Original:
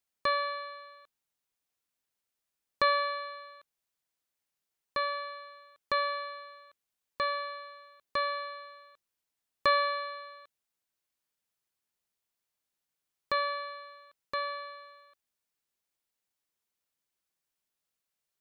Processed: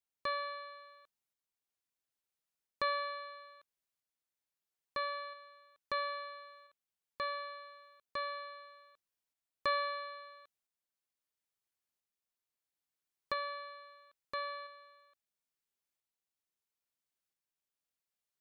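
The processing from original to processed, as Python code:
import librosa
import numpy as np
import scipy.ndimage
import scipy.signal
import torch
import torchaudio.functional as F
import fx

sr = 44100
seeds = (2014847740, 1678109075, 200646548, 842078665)

y = fx.tremolo_shape(x, sr, shape='saw_up', hz=0.75, depth_pct=35)
y = y * 10.0 ** (-5.0 / 20.0)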